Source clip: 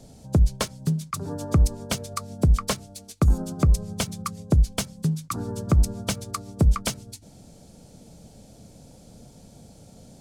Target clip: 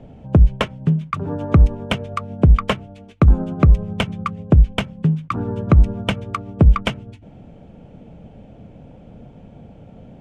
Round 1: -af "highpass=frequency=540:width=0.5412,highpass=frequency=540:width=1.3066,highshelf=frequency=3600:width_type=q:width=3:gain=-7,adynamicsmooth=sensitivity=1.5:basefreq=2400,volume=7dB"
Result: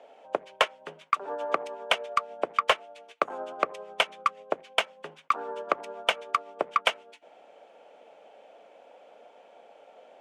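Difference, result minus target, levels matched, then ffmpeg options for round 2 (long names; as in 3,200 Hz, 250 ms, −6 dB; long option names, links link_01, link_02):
500 Hz band +6.5 dB
-af "highshelf=frequency=3600:width_type=q:width=3:gain=-7,adynamicsmooth=sensitivity=1.5:basefreq=2400,volume=7dB"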